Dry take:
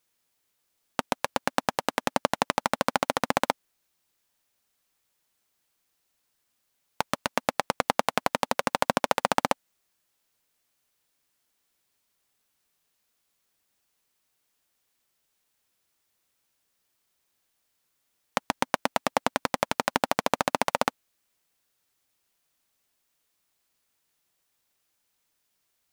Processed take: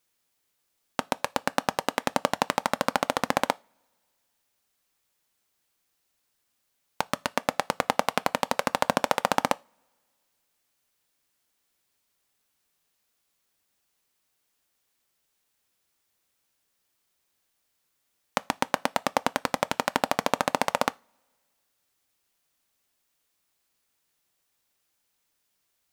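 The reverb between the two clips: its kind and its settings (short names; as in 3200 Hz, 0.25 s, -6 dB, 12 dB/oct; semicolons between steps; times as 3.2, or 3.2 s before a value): two-slope reverb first 0.28 s, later 1.9 s, from -27 dB, DRR 19 dB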